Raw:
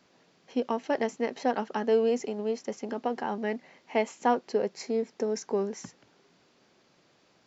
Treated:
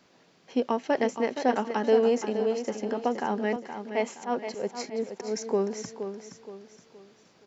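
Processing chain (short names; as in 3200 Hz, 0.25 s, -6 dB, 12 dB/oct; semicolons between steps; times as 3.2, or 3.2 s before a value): 3.56–5.37 auto swell 0.142 s; feedback echo 0.471 s, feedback 38%, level -9 dB; gain +2.5 dB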